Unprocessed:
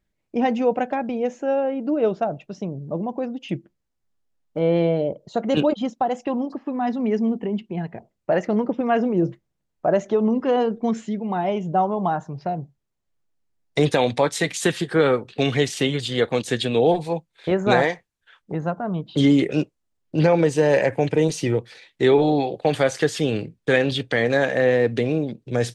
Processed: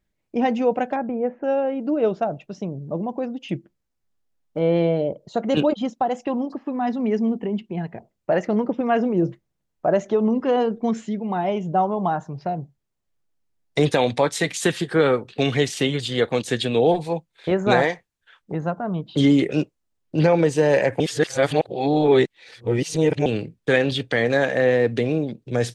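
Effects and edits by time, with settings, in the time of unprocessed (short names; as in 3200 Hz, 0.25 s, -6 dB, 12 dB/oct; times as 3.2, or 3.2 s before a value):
0.96–1.44 LPF 1800 Hz 24 dB/oct
21–23.26 reverse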